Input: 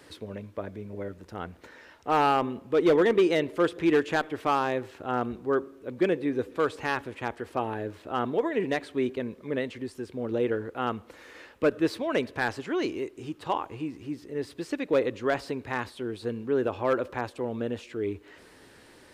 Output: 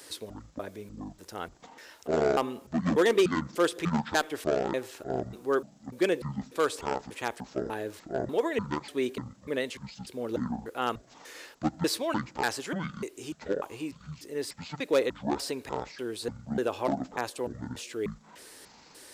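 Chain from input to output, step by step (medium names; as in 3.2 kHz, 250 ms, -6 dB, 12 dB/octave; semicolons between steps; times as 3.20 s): pitch shift switched off and on -11.5 st, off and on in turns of 296 ms; tone controls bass -8 dB, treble +14 dB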